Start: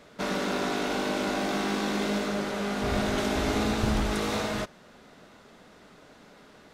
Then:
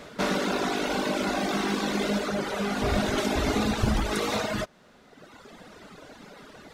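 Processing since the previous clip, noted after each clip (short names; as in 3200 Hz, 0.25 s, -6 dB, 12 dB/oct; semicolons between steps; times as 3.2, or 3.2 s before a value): reverb removal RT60 1.5 s; in parallel at +1 dB: compressor, threshold -41 dBFS, peak gain reduction 17 dB; on the sum: gain +2.5 dB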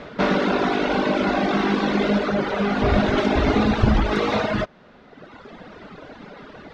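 air absorption 220 m; gain +7.5 dB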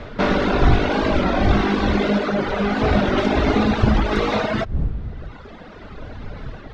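wind noise 83 Hz -26 dBFS; record warp 33 1/3 rpm, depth 100 cents; gain +1 dB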